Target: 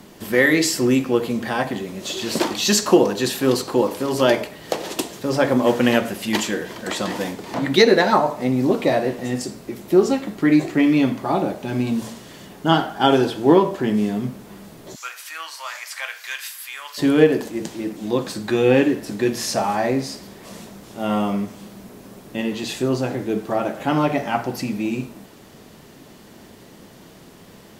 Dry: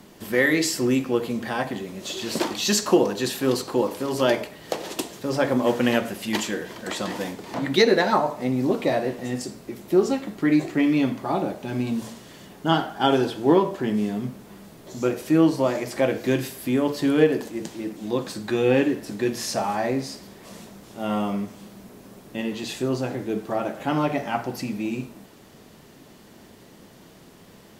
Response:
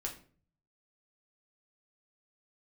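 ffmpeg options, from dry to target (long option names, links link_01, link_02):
-filter_complex "[0:a]asplit=3[link_01][link_02][link_03];[link_01]afade=type=out:start_time=14.94:duration=0.02[link_04];[link_02]highpass=frequency=1200:width=0.5412,highpass=frequency=1200:width=1.3066,afade=type=in:start_time=14.94:duration=0.02,afade=type=out:start_time=16.97:duration=0.02[link_05];[link_03]afade=type=in:start_time=16.97:duration=0.02[link_06];[link_04][link_05][link_06]amix=inputs=3:normalize=0,volume=4dB"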